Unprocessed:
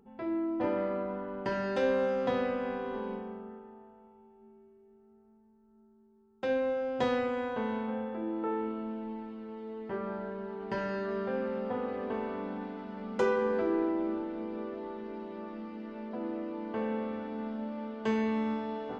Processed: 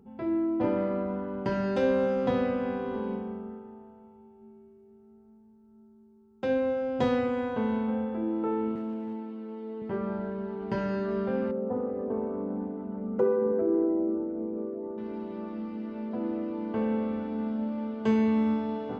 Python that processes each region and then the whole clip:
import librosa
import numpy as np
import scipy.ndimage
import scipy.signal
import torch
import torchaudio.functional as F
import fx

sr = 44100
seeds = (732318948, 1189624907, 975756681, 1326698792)

y = fx.chain(x, sr, fx.cheby1_highpass(hz=260.0, order=2),
    fx.clip_hard(threshold_db=-34.0), at=(8.75, 9.82))
y = fx.chain(y, sr, fx.envelope_sharpen(power=1.5),
    fx.peak_eq(hz=4200.0, db=-8.5, octaves=1.8), at=(11.51, 14.98))
y = scipy.signal.sosfilt(scipy.signal.butter(2, 59.0, 'highpass', fs=sr, output='sos'), y)
y = fx.low_shelf(y, sr, hz=270.0, db=11.5)
y = fx.notch(y, sr, hz=1800.0, q=22.0)